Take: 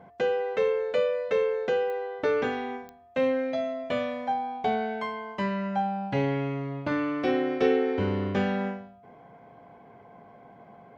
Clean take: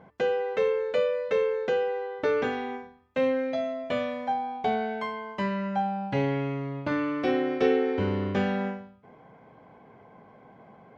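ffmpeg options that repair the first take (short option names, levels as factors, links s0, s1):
-af "adeclick=t=4,bandreject=f=700:w=30"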